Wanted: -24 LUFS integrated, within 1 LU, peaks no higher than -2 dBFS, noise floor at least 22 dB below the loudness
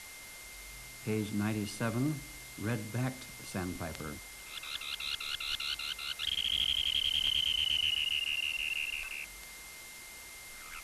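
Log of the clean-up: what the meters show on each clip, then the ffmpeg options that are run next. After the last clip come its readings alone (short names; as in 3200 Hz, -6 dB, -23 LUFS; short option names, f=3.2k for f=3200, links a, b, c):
steady tone 2100 Hz; tone level -51 dBFS; noise floor -49 dBFS; noise floor target -55 dBFS; loudness -32.5 LUFS; peak -20.5 dBFS; loudness target -24.0 LUFS
-> -af "bandreject=f=2.1k:w=30"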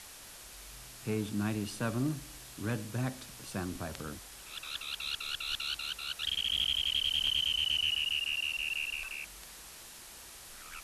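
steady tone none; noise floor -50 dBFS; noise floor target -55 dBFS
-> -af "afftdn=nr=6:nf=-50"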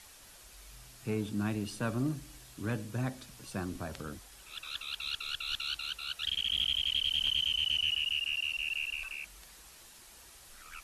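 noise floor -55 dBFS; loudness -32.5 LUFS; peak -22.0 dBFS; loudness target -24.0 LUFS
-> -af "volume=8.5dB"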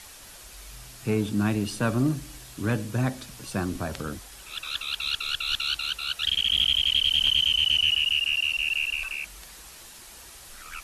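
loudness -24.0 LUFS; peak -13.5 dBFS; noise floor -47 dBFS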